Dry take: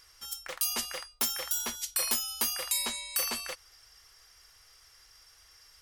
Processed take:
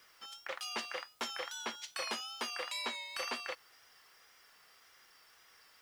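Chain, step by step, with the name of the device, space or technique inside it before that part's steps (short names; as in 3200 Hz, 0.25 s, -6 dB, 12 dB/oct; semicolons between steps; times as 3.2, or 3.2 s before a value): tape answering machine (BPF 300–3100 Hz; soft clip -27.5 dBFS, distortion -21 dB; wow and flutter; white noise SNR 26 dB); gain +1 dB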